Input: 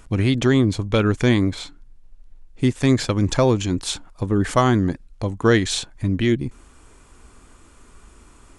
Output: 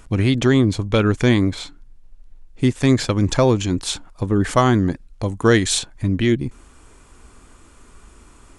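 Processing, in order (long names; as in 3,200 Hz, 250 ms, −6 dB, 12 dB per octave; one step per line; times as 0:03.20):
0:05.23–0:05.79: parametric band 9,800 Hz +7.5 dB 0.98 octaves
level +1.5 dB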